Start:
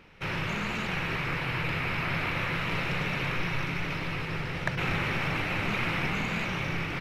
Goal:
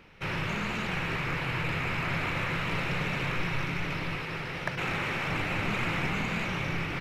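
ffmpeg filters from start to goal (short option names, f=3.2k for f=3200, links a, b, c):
-filter_complex "[0:a]asettb=1/sr,asplit=3[a][b][c];[a]atrim=end=4.164[d];[b]atrim=start=4.16:end=5.3,asetpts=PTS-STARTPTS,afade=t=in:d=0.004:c=qsin,afade=t=out:st=1.136:d=0.004:c=qsin,lowshelf=f=160:g=-8.5[e];[c]atrim=start=5.296[f];[d][e]acrossfade=d=0.004:c1=hsin:c2=qsin[g];[g][f]acrossfade=d=0.004:c1=qsin:c2=hsin,acrossover=split=1600[h][i];[i]asoftclip=type=tanh:threshold=-29dB[j];[h][j]amix=inputs=2:normalize=0"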